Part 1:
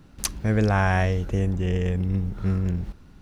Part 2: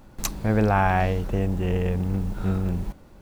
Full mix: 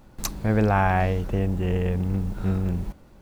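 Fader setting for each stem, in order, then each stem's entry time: -13.0 dB, -2.0 dB; 0.00 s, 0.00 s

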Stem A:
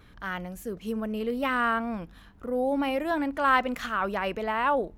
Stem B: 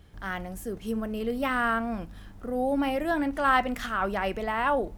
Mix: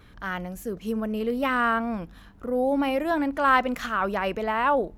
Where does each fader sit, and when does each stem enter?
+2.0 dB, -16.5 dB; 0.00 s, 0.00 s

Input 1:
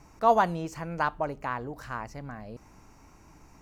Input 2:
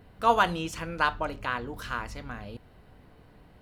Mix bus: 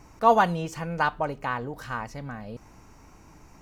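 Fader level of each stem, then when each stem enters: +2.5 dB, -7.5 dB; 0.00 s, 0.00 s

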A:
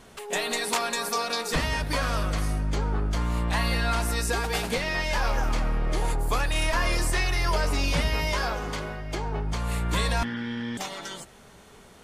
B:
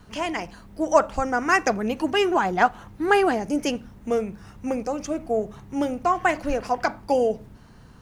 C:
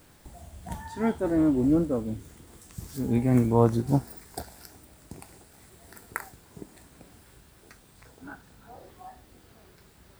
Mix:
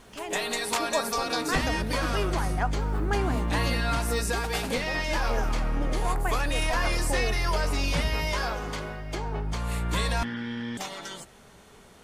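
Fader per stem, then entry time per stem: -1.5 dB, -11.0 dB, -14.5 dB; 0.00 s, 0.00 s, 0.00 s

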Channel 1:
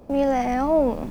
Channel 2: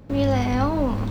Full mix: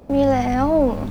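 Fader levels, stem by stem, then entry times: +1.5 dB, -5.0 dB; 0.00 s, 0.00 s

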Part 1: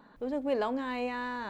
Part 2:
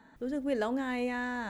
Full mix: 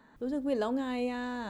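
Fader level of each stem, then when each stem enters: -7.0 dB, -2.5 dB; 0.00 s, 0.00 s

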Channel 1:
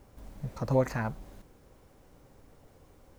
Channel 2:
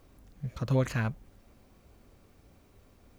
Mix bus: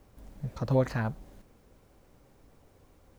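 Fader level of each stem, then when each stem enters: -3.5 dB, -6.5 dB; 0.00 s, 0.00 s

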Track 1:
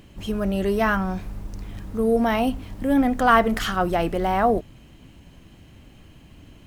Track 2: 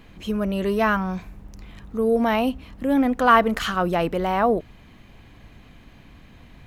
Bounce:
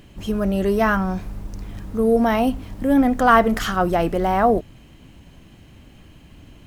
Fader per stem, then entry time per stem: +1.5 dB, -12.0 dB; 0.00 s, 0.00 s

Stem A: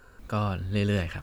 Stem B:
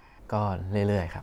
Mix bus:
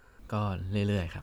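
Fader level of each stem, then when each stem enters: -5.0 dB, -15.5 dB; 0.00 s, 0.00 s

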